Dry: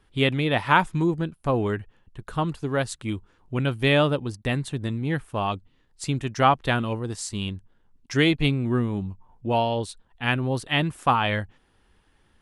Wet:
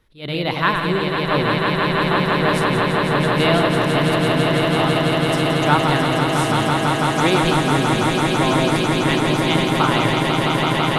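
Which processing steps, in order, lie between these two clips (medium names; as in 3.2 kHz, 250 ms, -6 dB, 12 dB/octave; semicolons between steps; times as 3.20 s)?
backward echo that repeats 101 ms, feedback 63%, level -6 dB; tape speed +13%; echo with a slow build-up 166 ms, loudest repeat 8, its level -5.5 dB; attacks held to a fixed rise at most 200 dB/s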